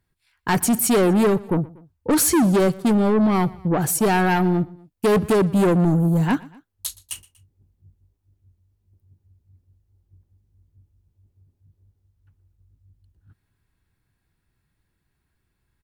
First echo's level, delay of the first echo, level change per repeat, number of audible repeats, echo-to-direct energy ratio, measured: -22.0 dB, 0.12 s, -5.0 dB, 2, -21.0 dB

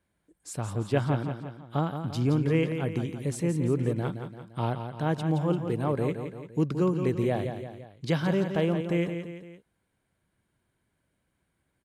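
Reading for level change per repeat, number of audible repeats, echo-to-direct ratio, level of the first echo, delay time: -6.0 dB, 3, -7.0 dB, -8.0 dB, 0.171 s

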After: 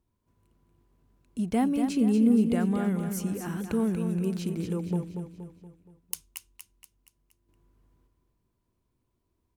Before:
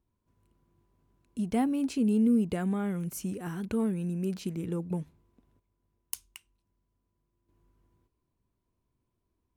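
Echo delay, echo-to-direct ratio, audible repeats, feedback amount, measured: 0.236 s, -6.5 dB, 5, 47%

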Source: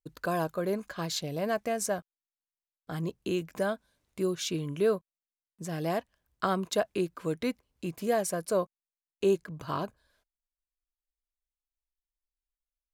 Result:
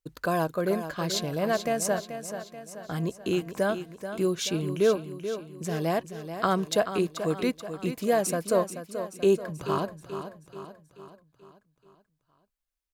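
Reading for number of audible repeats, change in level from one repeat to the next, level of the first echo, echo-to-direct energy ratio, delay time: 5, -6.0 dB, -10.0 dB, -8.5 dB, 0.433 s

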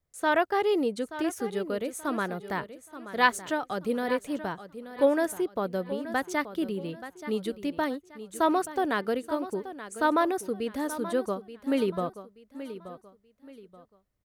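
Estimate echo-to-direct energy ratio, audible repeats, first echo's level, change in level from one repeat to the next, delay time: -12.5 dB, 3, -13.0 dB, -9.5 dB, 0.879 s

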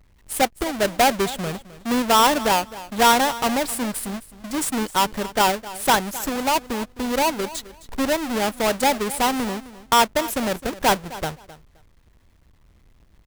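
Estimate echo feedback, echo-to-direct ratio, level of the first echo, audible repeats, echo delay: 19%, -17.0 dB, -17.0 dB, 2, 0.261 s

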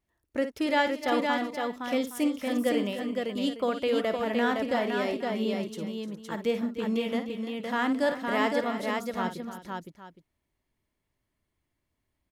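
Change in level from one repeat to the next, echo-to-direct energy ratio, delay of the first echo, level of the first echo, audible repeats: no steady repeat, -2.0 dB, 54 ms, -10.0 dB, 5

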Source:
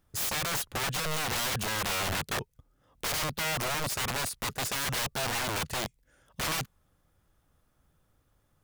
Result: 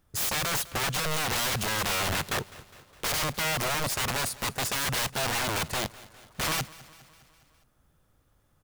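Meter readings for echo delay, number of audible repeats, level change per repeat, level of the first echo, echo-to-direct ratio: 0.205 s, 4, -4.5 dB, -20.0 dB, -18.0 dB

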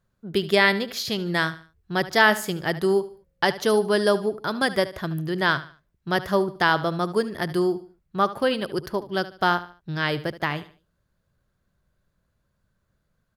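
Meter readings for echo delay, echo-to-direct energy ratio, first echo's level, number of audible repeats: 74 ms, -15.0 dB, -15.5 dB, 3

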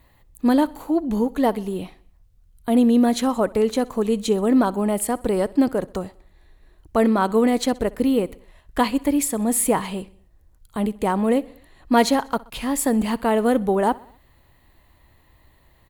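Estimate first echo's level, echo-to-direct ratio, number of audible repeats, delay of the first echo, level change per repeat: -22.5 dB, -21.0 dB, 3, 63 ms, -5.0 dB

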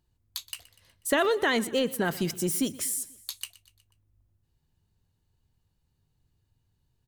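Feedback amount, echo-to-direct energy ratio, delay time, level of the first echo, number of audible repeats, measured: 56%, -18.5 dB, 0.122 s, -20.0 dB, 3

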